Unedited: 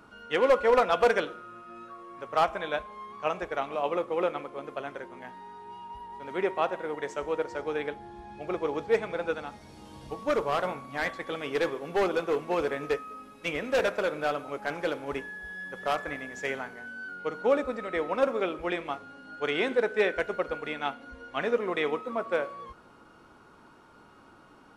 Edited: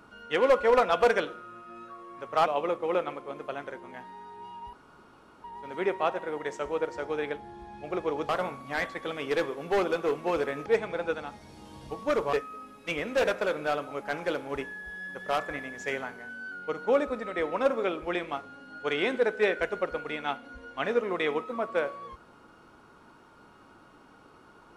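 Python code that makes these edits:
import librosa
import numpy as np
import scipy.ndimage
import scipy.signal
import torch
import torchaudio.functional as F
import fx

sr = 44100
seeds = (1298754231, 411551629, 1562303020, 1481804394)

y = fx.edit(x, sr, fx.cut(start_s=2.46, length_s=1.28),
    fx.insert_room_tone(at_s=6.01, length_s=0.71),
    fx.move(start_s=8.86, length_s=1.67, to_s=12.9), tone=tone)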